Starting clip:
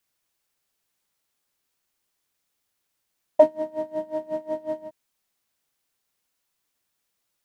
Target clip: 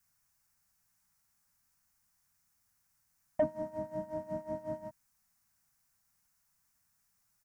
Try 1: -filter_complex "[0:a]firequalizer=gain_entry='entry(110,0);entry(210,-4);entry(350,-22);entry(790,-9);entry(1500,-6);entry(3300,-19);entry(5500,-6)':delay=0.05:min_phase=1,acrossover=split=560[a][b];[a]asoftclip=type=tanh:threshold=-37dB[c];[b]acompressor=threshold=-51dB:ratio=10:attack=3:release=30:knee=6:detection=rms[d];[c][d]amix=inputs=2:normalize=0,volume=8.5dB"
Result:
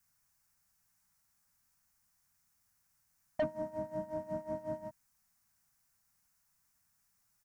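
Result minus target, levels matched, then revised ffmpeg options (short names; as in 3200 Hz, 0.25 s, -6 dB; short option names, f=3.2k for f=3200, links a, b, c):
soft clip: distortion +10 dB
-filter_complex "[0:a]firequalizer=gain_entry='entry(110,0);entry(210,-4);entry(350,-22);entry(790,-9);entry(1500,-6);entry(3300,-19);entry(5500,-6)':delay=0.05:min_phase=1,acrossover=split=560[a][b];[a]asoftclip=type=tanh:threshold=-29dB[c];[b]acompressor=threshold=-51dB:ratio=10:attack=3:release=30:knee=6:detection=rms[d];[c][d]amix=inputs=2:normalize=0,volume=8.5dB"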